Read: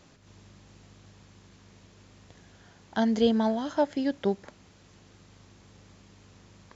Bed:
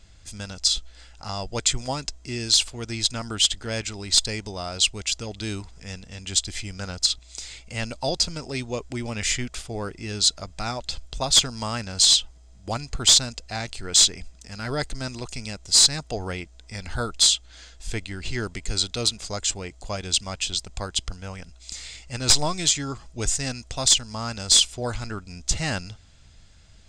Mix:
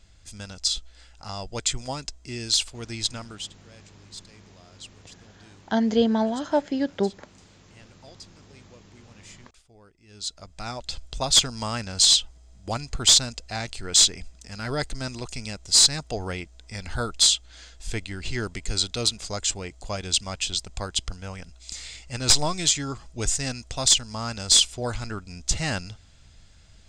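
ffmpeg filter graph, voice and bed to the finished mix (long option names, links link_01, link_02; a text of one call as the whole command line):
ffmpeg -i stem1.wav -i stem2.wav -filter_complex "[0:a]adelay=2750,volume=2.5dB[link_01];[1:a]volume=19dB,afade=type=out:start_time=3.1:duration=0.39:silence=0.105925,afade=type=in:start_time=10.06:duration=1.04:silence=0.0749894[link_02];[link_01][link_02]amix=inputs=2:normalize=0" out.wav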